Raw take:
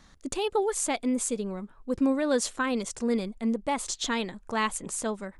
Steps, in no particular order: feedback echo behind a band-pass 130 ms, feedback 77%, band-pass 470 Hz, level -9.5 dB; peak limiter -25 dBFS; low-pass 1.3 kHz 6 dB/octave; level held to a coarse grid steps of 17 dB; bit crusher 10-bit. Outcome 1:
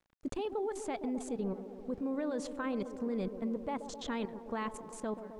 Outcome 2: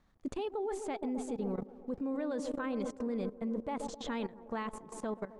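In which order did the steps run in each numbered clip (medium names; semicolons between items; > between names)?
level held to a coarse grid > feedback echo behind a band-pass > bit crusher > low-pass > peak limiter; bit crusher > feedback echo behind a band-pass > level held to a coarse grid > peak limiter > low-pass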